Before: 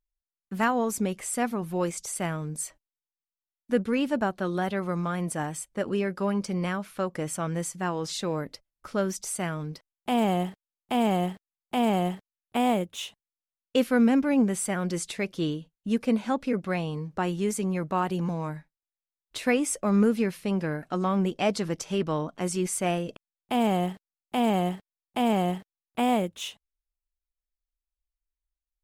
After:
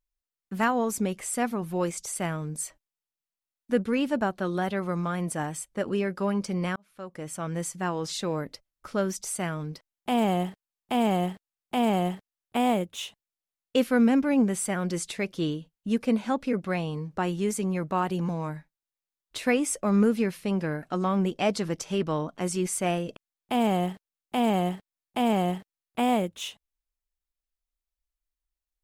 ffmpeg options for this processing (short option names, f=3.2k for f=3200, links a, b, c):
-filter_complex "[0:a]asplit=2[a][b];[a]atrim=end=6.76,asetpts=PTS-STARTPTS,afade=t=out:st=6.756:d=0.004:c=hsin[c];[b]atrim=start=6.76,asetpts=PTS-STARTPTS,afade=t=in:d=0.92[d];[c][d]concat=n=2:v=0:a=1"